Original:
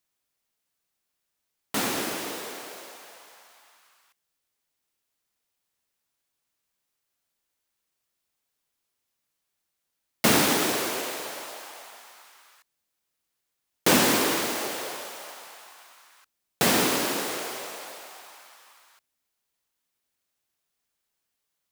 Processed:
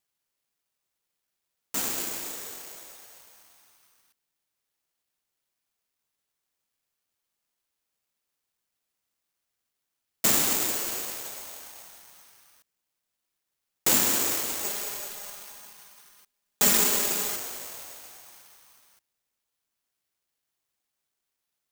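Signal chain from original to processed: 14.64–17.36 comb 4.9 ms, depth 99%; careless resampling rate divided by 6×, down none, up zero stuff; gain -10 dB

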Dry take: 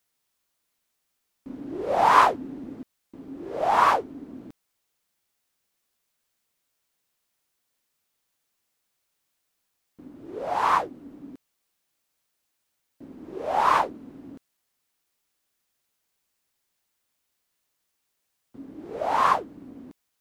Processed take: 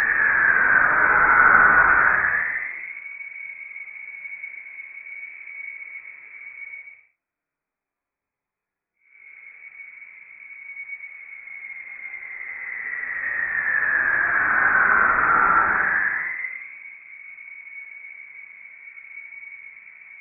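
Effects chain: Paulstretch 8.2×, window 0.10 s, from 2; inverted band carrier 2500 Hz

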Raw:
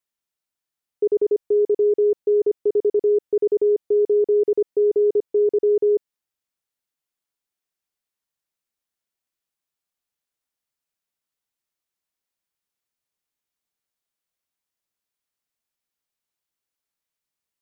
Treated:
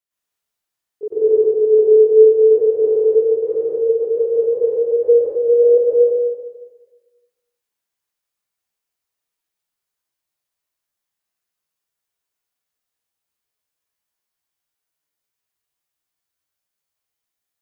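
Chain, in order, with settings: gliding pitch shift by +8 st starting unshifted; bell 280 Hz -5 dB 0.36 oct; plate-style reverb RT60 1.3 s, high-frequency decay 0.85×, pre-delay 90 ms, DRR -10 dB; gain -3.5 dB

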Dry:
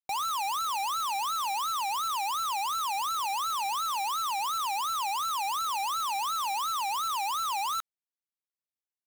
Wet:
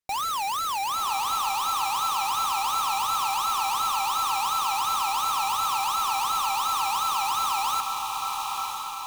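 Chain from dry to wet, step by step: low shelf 140 Hz +9 dB; on a send: diffused feedback echo 0.986 s, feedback 52%, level -3.5 dB; on the sum: careless resampling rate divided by 2×, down none, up hold; gain +2.5 dB

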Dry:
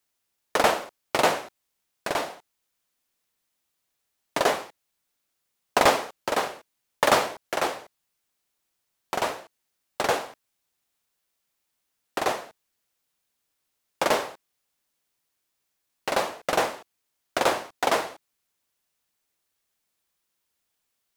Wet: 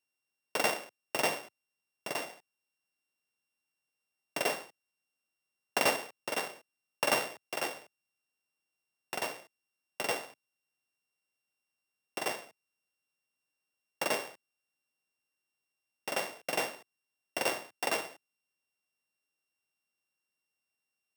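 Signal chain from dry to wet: sample sorter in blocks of 16 samples; HPF 110 Hz 24 dB/oct; gain -9 dB

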